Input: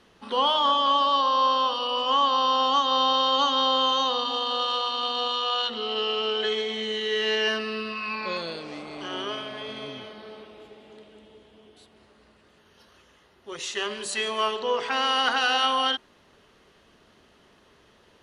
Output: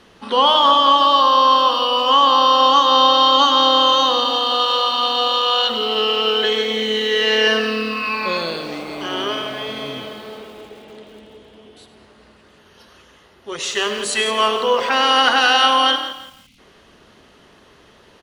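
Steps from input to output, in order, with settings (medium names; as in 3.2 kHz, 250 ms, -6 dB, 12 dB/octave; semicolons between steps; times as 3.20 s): frequency-shifting echo 100 ms, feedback 31%, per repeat +37 Hz, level -12.5 dB; time-frequency box 16.12–16.59 s, 300–2000 Hz -27 dB; bit-crushed delay 170 ms, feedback 35%, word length 8-bit, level -12 dB; trim +8.5 dB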